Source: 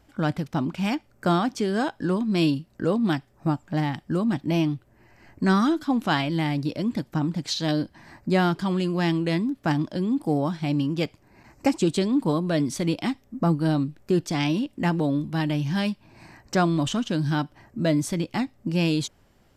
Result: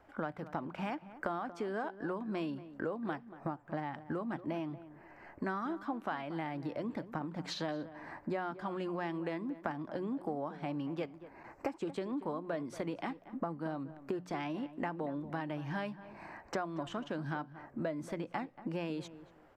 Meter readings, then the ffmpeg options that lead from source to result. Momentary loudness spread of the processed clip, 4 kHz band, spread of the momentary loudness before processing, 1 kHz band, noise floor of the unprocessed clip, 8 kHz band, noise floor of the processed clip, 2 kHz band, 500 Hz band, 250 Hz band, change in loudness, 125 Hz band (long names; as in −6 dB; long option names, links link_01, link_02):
5 LU, −18.0 dB, 6 LU, −10.0 dB, −60 dBFS, −20.0 dB, −59 dBFS, −11.5 dB, −11.0 dB, −15.5 dB, −14.0 dB, −18.5 dB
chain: -filter_complex "[0:a]acrossover=split=410 2000:gain=0.224 1 0.112[link_01][link_02][link_03];[link_01][link_02][link_03]amix=inputs=3:normalize=0,bandreject=frequency=60:width_type=h:width=6,bandreject=frequency=120:width_type=h:width=6,bandreject=frequency=180:width_type=h:width=6,acompressor=threshold=-39dB:ratio=6,asplit=2[link_04][link_05];[link_05]adelay=233,lowpass=frequency=1600:poles=1,volume=-14dB,asplit=2[link_06][link_07];[link_07]adelay=233,lowpass=frequency=1600:poles=1,volume=0.25,asplit=2[link_08][link_09];[link_09]adelay=233,lowpass=frequency=1600:poles=1,volume=0.25[link_10];[link_06][link_08][link_10]amix=inputs=3:normalize=0[link_11];[link_04][link_11]amix=inputs=2:normalize=0,volume=4dB"